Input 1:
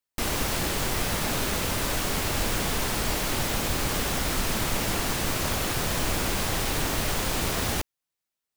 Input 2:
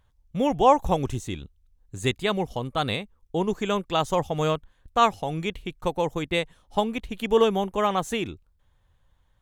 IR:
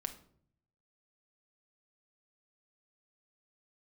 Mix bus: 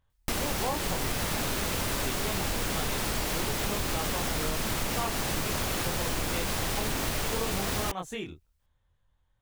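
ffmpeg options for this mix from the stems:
-filter_complex "[0:a]adelay=100,volume=2dB[link_01];[1:a]flanger=delay=22.5:depth=3.4:speed=1,volume=-5dB[link_02];[link_01][link_02]amix=inputs=2:normalize=0,acompressor=threshold=-27dB:ratio=4"

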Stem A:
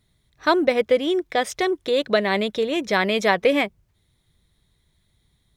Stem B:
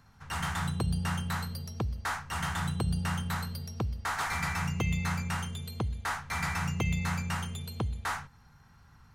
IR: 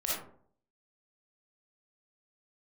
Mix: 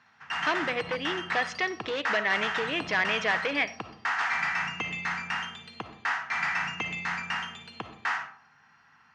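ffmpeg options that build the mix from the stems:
-filter_complex "[0:a]acompressor=threshold=-28dB:ratio=1.5,volume=-1dB,asplit=2[link_01][link_02];[link_02]volume=-19.5dB[link_03];[1:a]volume=0dB,asplit=2[link_04][link_05];[link_05]volume=-10dB[link_06];[2:a]atrim=start_sample=2205[link_07];[link_03][link_06]amix=inputs=2:normalize=0[link_08];[link_08][link_07]afir=irnorm=-1:irlink=0[link_09];[link_01][link_04][link_09]amix=inputs=3:normalize=0,volume=20dB,asoftclip=hard,volume=-20dB,highpass=350,equalizer=frequency=380:width_type=q:width=4:gain=-7,equalizer=frequency=550:width_type=q:width=4:gain=-8,equalizer=frequency=1800:width_type=q:width=4:gain=7,equalizer=frequency=2700:width_type=q:width=4:gain=6,equalizer=frequency=3900:width_type=q:width=4:gain=-7,lowpass=frequency=5300:width=0.5412,lowpass=frequency=5300:width=1.3066"

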